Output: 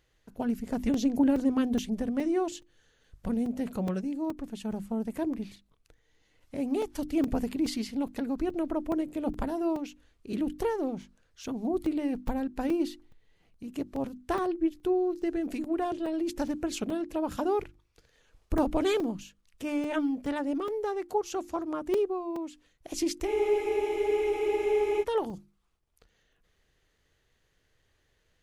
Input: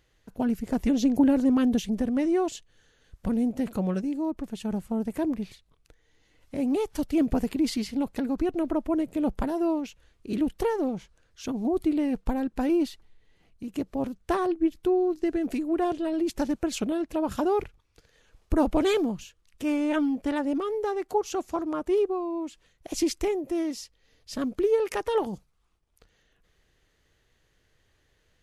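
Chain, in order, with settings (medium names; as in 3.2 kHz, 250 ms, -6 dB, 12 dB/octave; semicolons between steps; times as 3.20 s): hum notches 50/100/150/200/250/300/350 Hz; crackling interface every 0.42 s, samples 128, zero, from 0.94 s; spectral freeze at 23.30 s, 1.72 s; trim -3 dB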